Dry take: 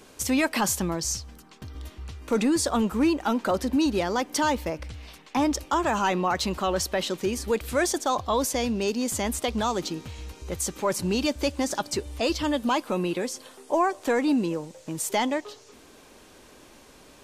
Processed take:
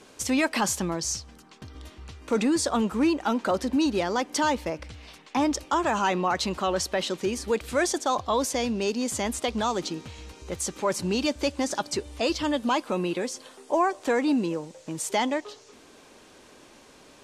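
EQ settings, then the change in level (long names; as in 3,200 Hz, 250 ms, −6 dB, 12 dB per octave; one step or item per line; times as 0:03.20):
low-pass filter 9,600 Hz 12 dB per octave
low-shelf EQ 77 Hz −9.5 dB
0.0 dB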